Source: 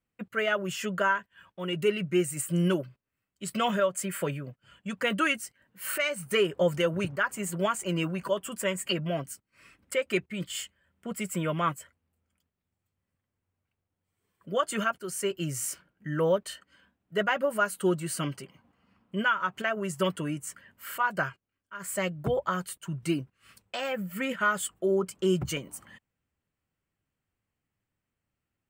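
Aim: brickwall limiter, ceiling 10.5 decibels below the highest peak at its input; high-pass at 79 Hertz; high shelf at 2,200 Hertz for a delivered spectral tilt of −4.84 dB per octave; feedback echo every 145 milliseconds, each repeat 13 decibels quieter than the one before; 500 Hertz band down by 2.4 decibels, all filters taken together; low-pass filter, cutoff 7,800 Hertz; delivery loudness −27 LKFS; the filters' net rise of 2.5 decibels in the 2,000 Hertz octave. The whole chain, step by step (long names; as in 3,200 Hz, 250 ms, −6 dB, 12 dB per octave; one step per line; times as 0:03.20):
high-pass filter 79 Hz
low-pass filter 7,800 Hz
parametric band 500 Hz −3 dB
parametric band 2,000 Hz +6.5 dB
high-shelf EQ 2,200 Hz −5 dB
brickwall limiter −23.5 dBFS
repeating echo 145 ms, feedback 22%, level −13 dB
level +7.5 dB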